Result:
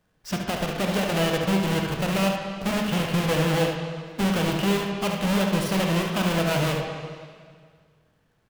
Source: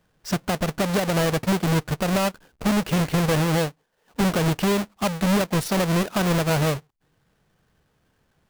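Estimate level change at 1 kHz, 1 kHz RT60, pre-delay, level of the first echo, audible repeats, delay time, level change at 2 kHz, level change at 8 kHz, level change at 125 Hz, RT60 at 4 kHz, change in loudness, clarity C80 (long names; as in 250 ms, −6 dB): −1.5 dB, 1.8 s, 8 ms, −7.0 dB, 1, 72 ms, 0.0 dB, −3.0 dB, −2.5 dB, 1.8 s, −1.5 dB, 4.5 dB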